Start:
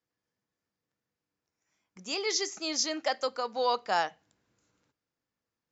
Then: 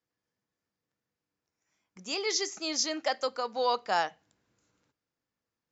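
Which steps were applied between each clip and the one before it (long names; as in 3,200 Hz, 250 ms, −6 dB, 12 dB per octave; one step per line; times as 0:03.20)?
no processing that can be heard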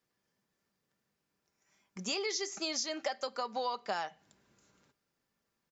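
comb filter 5.1 ms, depth 36%
downward compressor 10 to 1, threshold −37 dBFS, peak gain reduction 15.5 dB
level +5 dB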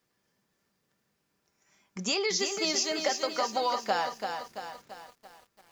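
feedback echo at a low word length 337 ms, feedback 55%, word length 10 bits, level −6 dB
level +6 dB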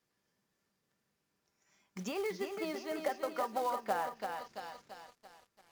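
treble cut that deepens with the level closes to 1,700 Hz, closed at −28 dBFS
floating-point word with a short mantissa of 2 bits
level −5 dB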